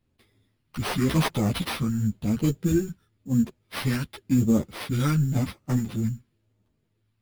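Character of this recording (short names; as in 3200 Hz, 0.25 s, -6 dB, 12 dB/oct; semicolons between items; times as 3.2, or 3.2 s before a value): phasing stages 2, 0.94 Hz, lowest notch 620–1800 Hz; aliases and images of a low sample rate 7100 Hz, jitter 0%; a shimmering, thickened sound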